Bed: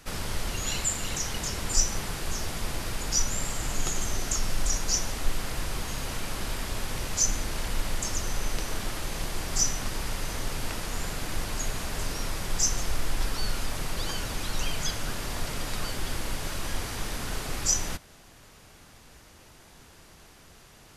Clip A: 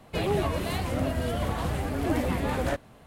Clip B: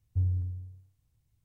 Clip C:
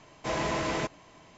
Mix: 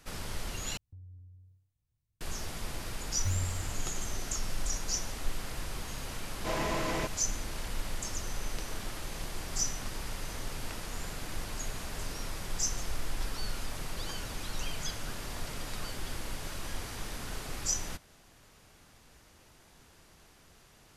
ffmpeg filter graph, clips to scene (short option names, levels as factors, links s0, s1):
-filter_complex "[2:a]asplit=2[s0][s1];[0:a]volume=0.473[s2];[s0]acompressor=threshold=0.0141:ratio=6:attack=2.2:release=401:knee=1:detection=rms[s3];[s1]acrusher=samples=15:mix=1:aa=0.000001:lfo=1:lforange=24:lforate=2.2[s4];[3:a]dynaudnorm=f=110:g=3:m=3.76[s5];[s2]asplit=2[s6][s7];[s6]atrim=end=0.774[s8];[s3]atrim=end=1.44,asetpts=PTS-STARTPTS,volume=0.316[s9];[s7]atrim=start=2.206[s10];[s4]atrim=end=1.44,asetpts=PTS-STARTPTS,volume=0.596,afade=t=in:d=0.004:c=hsin,afade=t=out:st=1.436:d=0.004:c=hsin,adelay=136269S[s11];[s5]atrim=end=1.37,asetpts=PTS-STARTPTS,volume=0.188,afade=t=in:d=0.004:c=hsin,afade=t=out:st=1.366:d=0.004:c=hsin,adelay=6200[s12];[s8][s9]acrossfade=d=0.004:c1=hsin:c2=hsin[s13];[s13][s10]acrossfade=d=0.004:c1=hsin:c2=hsin[s14];[s14][s11][s12]amix=inputs=3:normalize=0"